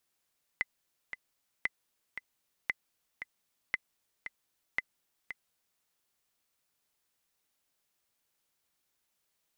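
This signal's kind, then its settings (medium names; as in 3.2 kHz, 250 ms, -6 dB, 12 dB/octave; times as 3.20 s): metronome 115 bpm, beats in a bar 2, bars 5, 2.03 kHz, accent 10 dB -16 dBFS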